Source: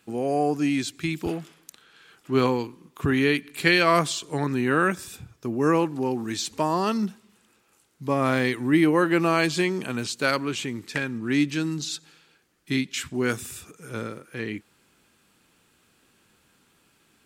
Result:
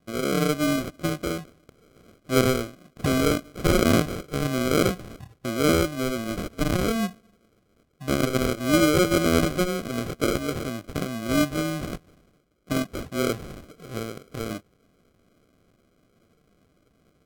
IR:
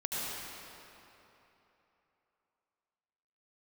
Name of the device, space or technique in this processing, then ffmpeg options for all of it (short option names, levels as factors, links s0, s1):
crushed at another speed: -af "asetrate=55125,aresample=44100,acrusher=samples=39:mix=1:aa=0.000001,asetrate=35280,aresample=44100"